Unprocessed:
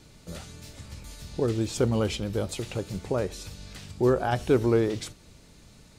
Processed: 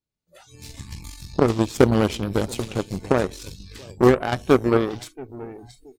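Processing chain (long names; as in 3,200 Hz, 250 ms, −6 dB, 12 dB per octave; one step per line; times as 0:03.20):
on a send: repeating echo 677 ms, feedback 22%, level −17.5 dB
on the sum: automatic gain control gain up to 16 dB
noise reduction from a noise print of the clip's start 28 dB
0:01.58–0:02.92: downward expander −19 dBFS
in parallel at +1 dB: downward compressor 6 to 1, threshold −24 dBFS, peak gain reduction 16 dB
on the sum: dynamic equaliser 250 Hz, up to +3 dB, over −25 dBFS, Q 1.4
harmonic generator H 3 −12 dB, 8 −30 dB, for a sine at 0.5 dBFS
level −4.5 dB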